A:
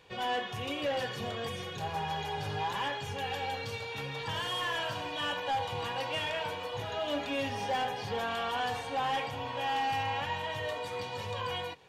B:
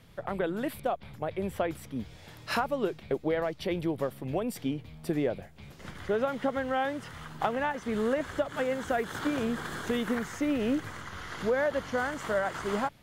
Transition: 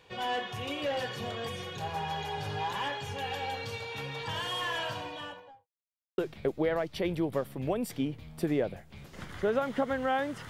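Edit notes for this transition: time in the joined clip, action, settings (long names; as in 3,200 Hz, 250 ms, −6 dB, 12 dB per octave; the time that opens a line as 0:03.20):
A
0:04.86–0:05.68: fade out and dull
0:05.68–0:06.18: silence
0:06.18: continue with B from 0:02.84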